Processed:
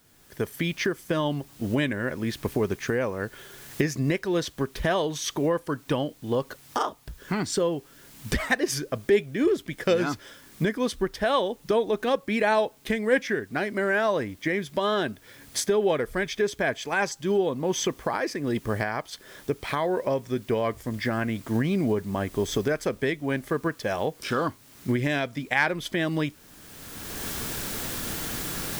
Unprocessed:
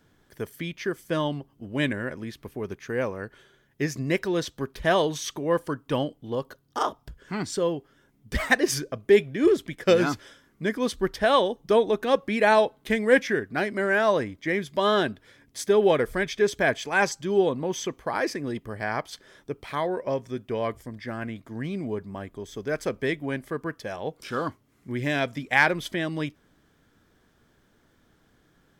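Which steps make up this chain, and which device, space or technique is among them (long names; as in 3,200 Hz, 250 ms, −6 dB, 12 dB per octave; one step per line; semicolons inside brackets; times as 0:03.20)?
cheap recorder with automatic gain (white noise bed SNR 34 dB; camcorder AGC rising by 24 dB per second)
level −3.5 dB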